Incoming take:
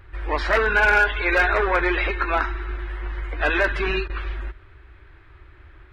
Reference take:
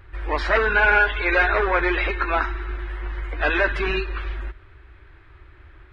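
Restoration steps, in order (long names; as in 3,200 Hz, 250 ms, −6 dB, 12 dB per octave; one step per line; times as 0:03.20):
clipped peaks rebuilt −10.5 dBFS
repair the gap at 0:04.08, 15 ms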